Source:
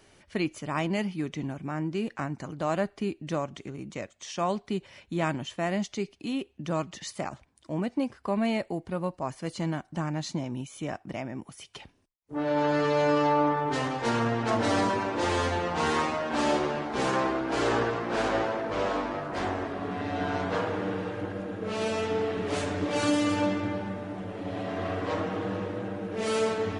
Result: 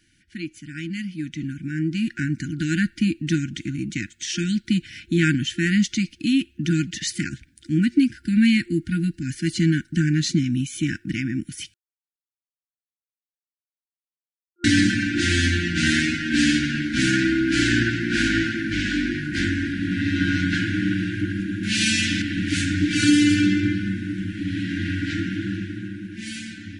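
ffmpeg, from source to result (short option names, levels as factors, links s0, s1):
-filter_complex "[0:a]asettb=1/sr,asplit=3[s0][s1][s2];[s0]atrim=end=21.634[s3];[s1]atrim=start=21.63:end=22.22,asetpts=PTS-STARTPTS,afade=t=in:d=0.004:c=qsin,afade=t=out:st=0.586:d=0.004:c=qsin,highshelf=f=2400:g=10.5[s4];[s2]atrim=start=22.216[s5];[s3][s4]acrossfade=d=0.004:c1=hsin:c2=qsin[s6];[s6][s5]acrossfade=d=0.004:c1=qsin:c2=hsin,asplit=3[s7][s8][s9];[s7]atrim=end=11.74,asetpts=PTS-STARTPTS,afade=t=out:st=11.736:d=0.004:c=hsin[s10];[s8]atrim=start=11.74:end=14.64,asetpts=PTS-STARTPTS,volume=0[s11];[s9]atrim=start=14.64,asetpts=PTS-STARTPTS,afade=t=in:d=0.004:c=hsin[s12];[s10][s11][s12]concat=n=3:v=0:a=1,afftfilt=real='re*(1-between(b*sr/4096,350,1400))':imag='im*(1-between(b*sr/4096,350,1400))':win_size=4096:overlap=0.75,dynaudnorm=f=410:g=9:m=5.31,volume=0.75"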